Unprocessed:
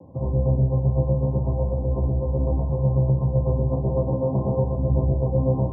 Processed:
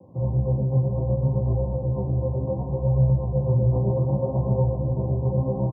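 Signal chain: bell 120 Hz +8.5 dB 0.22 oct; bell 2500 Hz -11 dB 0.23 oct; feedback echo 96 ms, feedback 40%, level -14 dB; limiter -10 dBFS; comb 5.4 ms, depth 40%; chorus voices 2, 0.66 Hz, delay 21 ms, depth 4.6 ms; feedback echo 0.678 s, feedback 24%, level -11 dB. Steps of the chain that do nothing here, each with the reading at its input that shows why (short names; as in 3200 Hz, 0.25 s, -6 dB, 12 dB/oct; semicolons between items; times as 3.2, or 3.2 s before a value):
bell 2500 Hz: input band ends at 680 Hz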